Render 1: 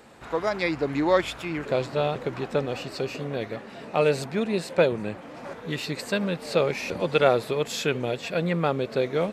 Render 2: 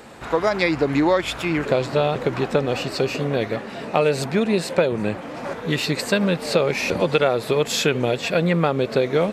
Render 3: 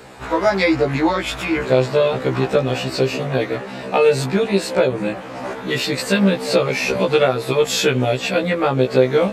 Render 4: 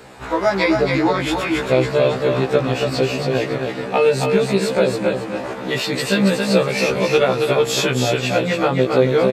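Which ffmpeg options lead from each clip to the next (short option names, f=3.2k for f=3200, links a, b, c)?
-af "acompressor=threshold=-23dB:ratio=6,volume=8.5dB"
-af "afftfilt=real='re*1.73*eq(mod(b,3),0)':imag='im*1.73*eq(mod(b,3),0)':win_size=2048:overlap=0.75,volume=5dB"
-af "aecho=1:1:276|552|828|1104:0.596|0.179|0.0536|0.0161,volume=-1dB"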